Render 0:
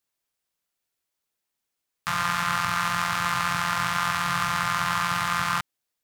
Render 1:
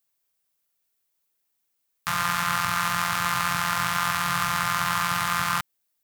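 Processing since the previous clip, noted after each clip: high shelf 11000 Hz +11.5 dB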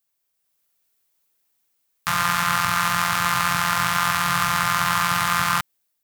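AGC gain up to 5.5 dB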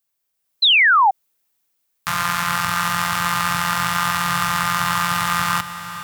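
diffused feedback echo 0.452 s, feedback 43%, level -12 dB; painted sound fall, 0.62–1.11, 740–4200 Hz -13 dBFS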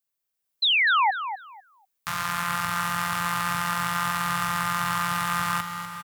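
feedback echo 0.248 s, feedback 19%, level -10 dB; gain -7.5 dB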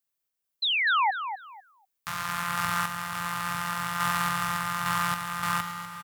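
random-step tremolo

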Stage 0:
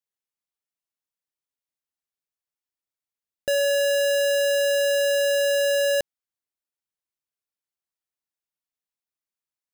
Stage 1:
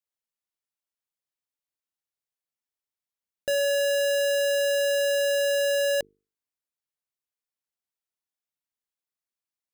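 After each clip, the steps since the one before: notches 50/100/150/200/250/300/350/400/450 Hz; gain -2.5 dB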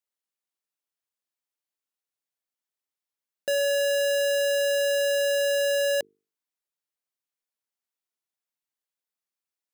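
HPF 210 Hz 12 dB/oct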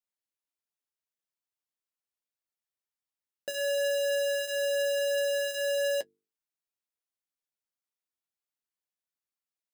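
flange 0.5 Hz, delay 8.5 ms, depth 2.6 ms, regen -38%; gain -1.5 dB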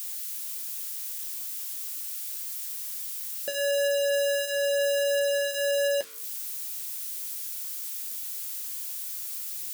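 switching spikes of -31.5 dBFS; gain +3 dB

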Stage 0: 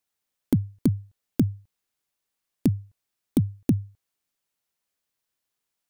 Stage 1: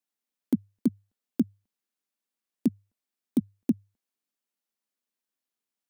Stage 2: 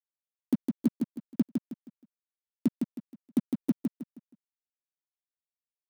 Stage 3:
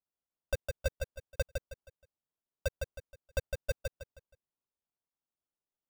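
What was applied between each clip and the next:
resonant low shelf 160 Hz -10.5 dB, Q 3; gain -7.5 dB
crossover distortion -41 dBFS; feedback echo 0.158 s, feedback 32%, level -4.5 dB; gain -1.5 dB
ring modulator 1800 Hz; sample-and-hold 21×; gain -3.5 dB

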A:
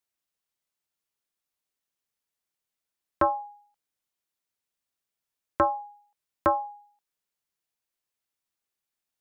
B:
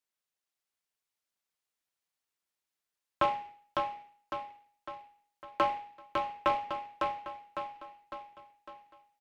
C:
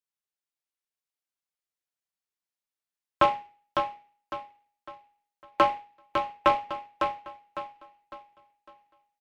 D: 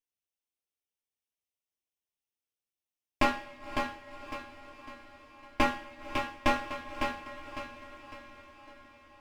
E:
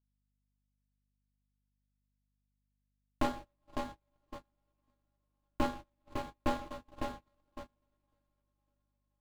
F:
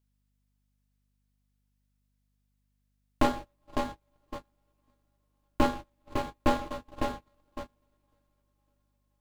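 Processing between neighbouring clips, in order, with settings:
HPF 600 Hz 6 dB/oct; on a send: feedback echo 0.554 s, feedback 51%, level -4 dB; on the sum: noise-modulated delay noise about 1400 Hz, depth 0.041 ms; gain -2.5 dB
upward expander 1.5:1, over -51 dBFS; gain +7.5 dB
minimum comb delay 0.33 ms; diffused feedback echo 0.527 s, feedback 65%, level -15 dB; two-slope reverb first 0.26 s, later 1.5 s, from -18 dB, DRR 1 dB; gain -4.5 dB
median filter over 25 samples; hum 50 Hz, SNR 12 dB; gate -40 dBFS, range -28 dB; gain -3.5 dB
bell 440 Hz +3.5 dB 0.27 oct; gain +7 dB

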